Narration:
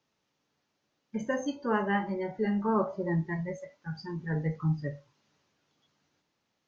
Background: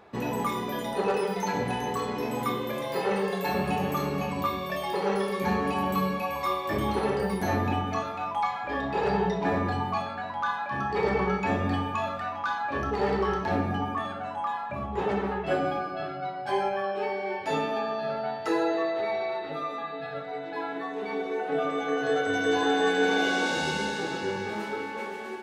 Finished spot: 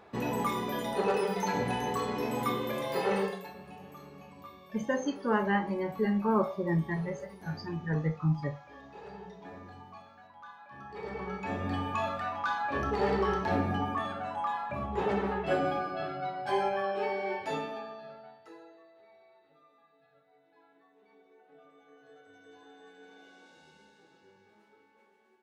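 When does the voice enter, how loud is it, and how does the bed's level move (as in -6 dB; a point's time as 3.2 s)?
3.60 s, +0.5 dB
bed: 3.23 s -2 dB
3.54 s -20.5 dB
10.57 s -20.5 dB
12 s -2 dB
17.32 s -2 dB
18.83 s -30.5 dB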